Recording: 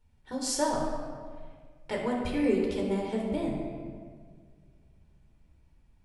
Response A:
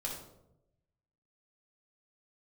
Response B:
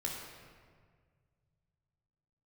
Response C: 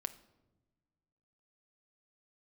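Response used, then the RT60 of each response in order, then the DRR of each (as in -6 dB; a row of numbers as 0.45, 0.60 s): B; 0.85 s, 1.8 s, not exponential; -3.5, -1.5, 9.5 dB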